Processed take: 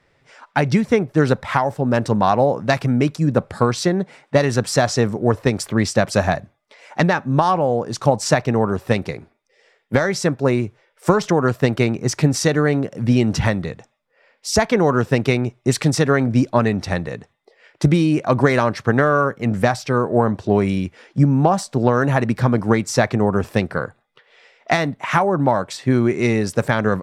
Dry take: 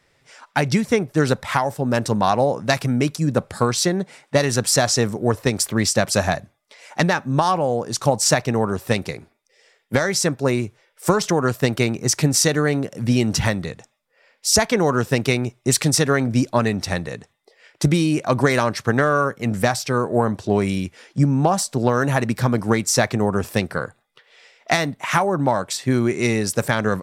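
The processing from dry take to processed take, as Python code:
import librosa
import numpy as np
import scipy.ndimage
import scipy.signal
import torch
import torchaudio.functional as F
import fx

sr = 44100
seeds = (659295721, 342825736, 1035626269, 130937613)

y = fx.lowpass(x, sr, hz=2300.0, slope=6)
y = y * librosa.db_to_amplitude(2.5)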